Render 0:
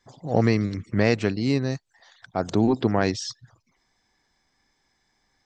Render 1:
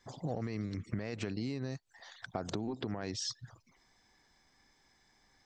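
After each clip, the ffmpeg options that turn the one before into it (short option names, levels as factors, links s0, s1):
-af "alimiter=limit=0.15:level=0:latency=1:release=53,acompressor=threshold=0.02:ratio=16,volume=1.12"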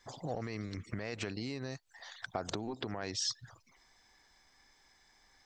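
-af "equalizer=f=170:w=0.47:g=-8,volume=1.5"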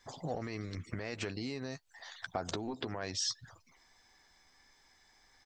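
-filter_complex "[0:a]asplit=2[s0][s1];[s1]adelay=12,volume=0.316[s2];[s0][s2]amix=inputs=2:normalize=0"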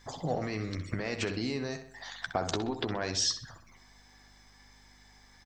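-filter_complex "[0:a]aeval=exprs='val(0)+0.000501*(sin(2*PI*50*n/s)+sin(2*PI*2*50*n/s)/2+sin(2*PI*3*50*n/s)/3+sin(2*PI*4*50*n/s)/4+sin(2*PI*5*50*n/s)/5)':c=same,asplit=2[s0][s1];[s1]adelay=64,lowpass=f=4300:p=1,volume=0.355,asplit=2[s2][s3];[s3]adelay=64,lowpass=f=4300:p=1,volume=0.49,asplit=2[s4][s5];[s5]adelay=64,lowpass=f=4300:p=1,volume=0.49,asplit=2[s6][s7];[s7]adelay=64,lowpass=f=4300:p=1,volume=0.49,asplit=2[s8][s9];[s9]adelay=64,lowpass=f=4300:p=1,volume=0.49,asplit=2[s10][s11];[s11]adelay=64,lowpass=f=4300:p=1,volume=0.49[s12];[s0][s2][s4][s6][s8][s10][s12]amix=inputs=7:normalize=0,volume=1.88"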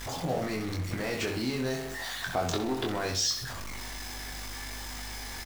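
-filter_complex "[0:a]aeval=exprs='val(0)+0.5*0.0211*sgn(val(0))':c=same,asplit=2[s0][s1];[s1]adelay=23,volume=0.631[s2];[s0][s2]amix=inputs=2:normalize=0,volume=0.794"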